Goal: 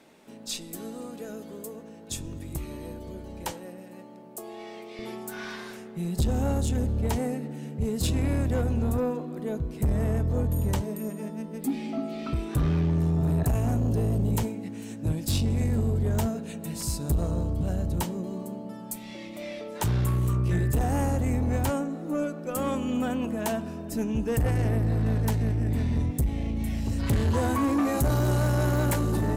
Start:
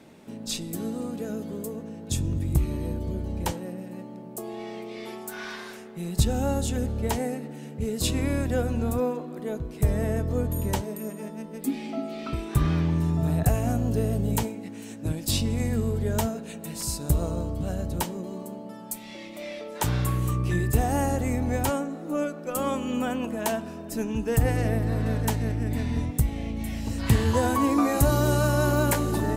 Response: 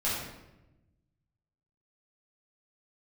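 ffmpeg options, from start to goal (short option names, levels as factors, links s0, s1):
-af "asetnsamples=n=441:p=0,asendcmd='4.99 equalizer g 6.5',equalizer=f=85:w=0.36:g=-11,asoftclip=type=tanh:threshold=0.126,volume=0.841"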